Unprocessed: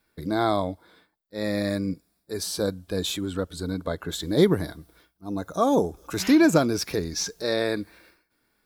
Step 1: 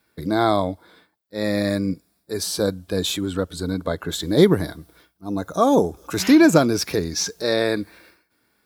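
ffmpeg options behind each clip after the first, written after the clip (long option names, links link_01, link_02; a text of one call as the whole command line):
ffmpeg -i in.wav -af "highpass=61,volume=4.5dB" out.wav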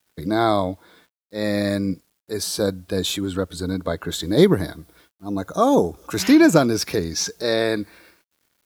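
ffmpeg -i in.wav -af "acrusher=bits=9:mix=0:aa=0.000001" out.wav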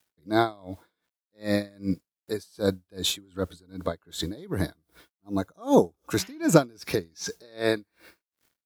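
ffmpeg -i in.wav -af "aeval=exprs='val(0)*pow(10,-32*(0.5-0.5*cos(2*PI*2.6*n/s))/20)':channel_layout=same" out.wav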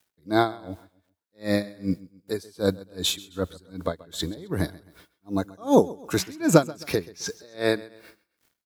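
ffmpeg -i in.wav -af "aecho=1:1:132|264|396:0.0944|0.0368|0.0144,volume=1.5dB" out.wav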